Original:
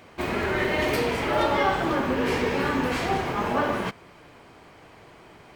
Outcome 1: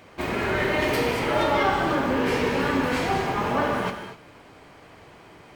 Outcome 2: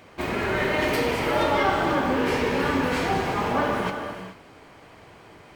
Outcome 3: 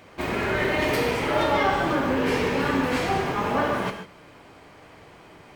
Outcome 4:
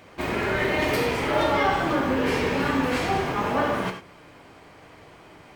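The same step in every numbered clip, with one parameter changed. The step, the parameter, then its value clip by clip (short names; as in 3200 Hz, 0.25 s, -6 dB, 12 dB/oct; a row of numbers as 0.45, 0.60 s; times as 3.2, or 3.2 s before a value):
non-linear reverb, gate: 0.27, 0.46, 0.17, 0.12 s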